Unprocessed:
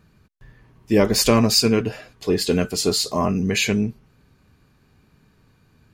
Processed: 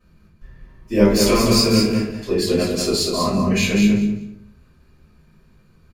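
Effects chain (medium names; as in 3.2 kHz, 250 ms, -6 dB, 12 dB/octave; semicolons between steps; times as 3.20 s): on a send: feedback delay 194 ms, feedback 19%, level -5 dB; on the sum: simulated room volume 47 m³, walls mixed, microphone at 2.7 m; trim -13 dB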